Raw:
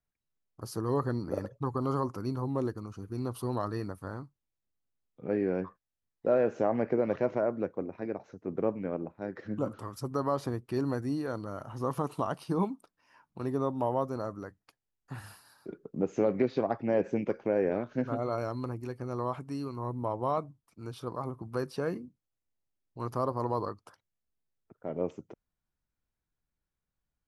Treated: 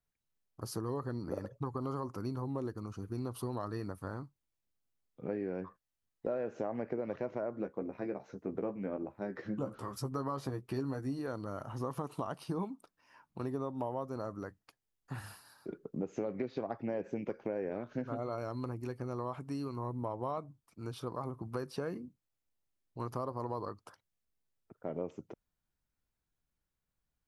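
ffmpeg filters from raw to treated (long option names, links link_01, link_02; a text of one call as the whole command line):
ffmpeg -i in.wav -filter_complex "[0:a]asettb=1/sr,asplit=3[link_01][link_02][link_03];[link_01]atrim=end=7.514[link_04];[link_02]atrim=start=7.51:end=11.19,asetpts=PTS-STARTPTS,afade=type=in:duration=0.004:curve=qsin,afade=type=out:start_time=3.676:duration=0.004:curve=qsin,asplit=2[link_05][link_06];[link_06]adelay=15,volume=-5.5dB[link_07];[link_05][link_07]amix=inputs=2:normalize=0,atrim=end_sample=162288[link_08];[link_03]atrim=start=11.186[link_09];[link_04][link_08]acrossfade=duration=0.004:curve1=hsin:curve2=qsin[link_10];[link_10][link_09]acrossfade=duration=0.004:curve1=qsin:curve2=hsin,acompressor=threshold=-34dB:ratio=4" out.wav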